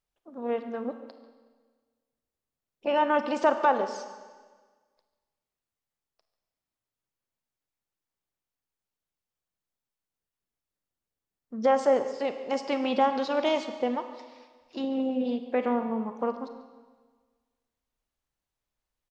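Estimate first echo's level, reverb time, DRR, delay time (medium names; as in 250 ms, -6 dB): -18.0 dB, 1.5 s, 8.0 dB, 142 ms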